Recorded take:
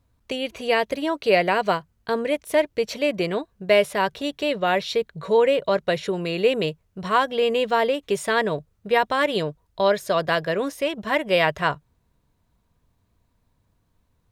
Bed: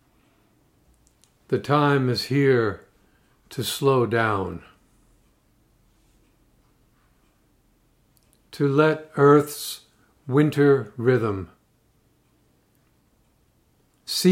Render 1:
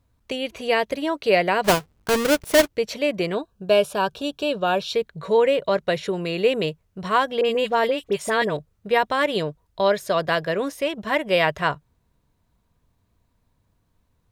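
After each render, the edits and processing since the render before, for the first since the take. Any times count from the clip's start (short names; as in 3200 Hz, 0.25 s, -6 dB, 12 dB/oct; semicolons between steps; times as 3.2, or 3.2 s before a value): 1.64–2.68 half-waves squared off; 3.35–4.94 Butterworth band-stop 2000 Hz, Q 2.8; 7.41–8.57 dispersion highs, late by 41 ms, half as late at 1700 Hz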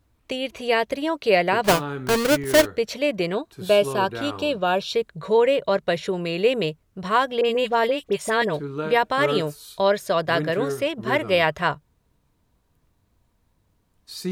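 add bed -11 dB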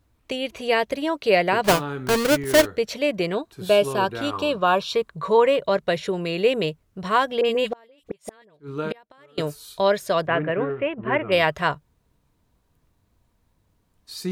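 4.33–5.56 bell 1100 Hz +11.5 dB 0.39 oct; 7.69–9.38 flipped gate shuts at -15 dBFS, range -32 dB; 10.27–11.32 elliptic low-pass 2700 Hz, stop band 60 dB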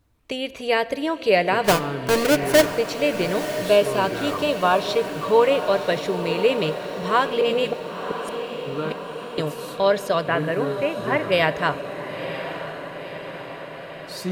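on a send: diffused feedback echo 0.994 s, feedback 64%, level -10 dB; on the sum: shoebox room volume 2500 m³, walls mixed, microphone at 0.38 m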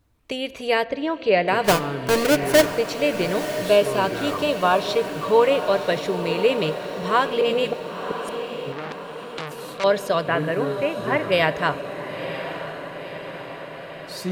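0.84–1.48 air absorption 140 m; 8.72–9.84 core saturation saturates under 3100 Hz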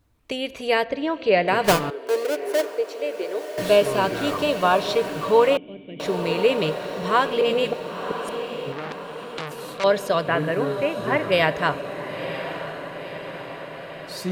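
1.9–3.58 ladder high-pass 370 Hz, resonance 60%; 5.57–6 vocal tract filter i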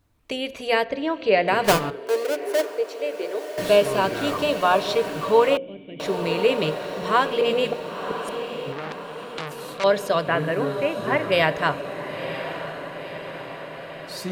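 notches 60/120/180/240/300/360/420/480/540 Hz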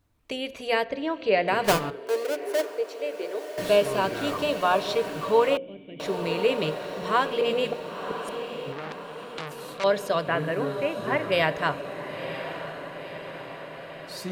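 gain -3.5 dB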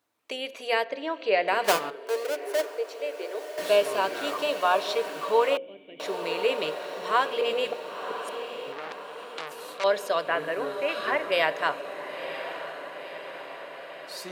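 HPF 420 Hz 12 dB/oct; 10.89–11.1 spectral gain 1100–5400 Hz +8 dB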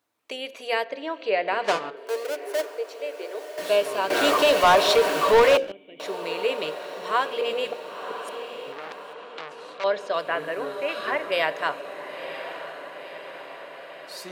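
1.31–1.97 air absorption 95 m; 4.1–5.72 sample leveller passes 3; 9.13–10.14 air absorption 100 m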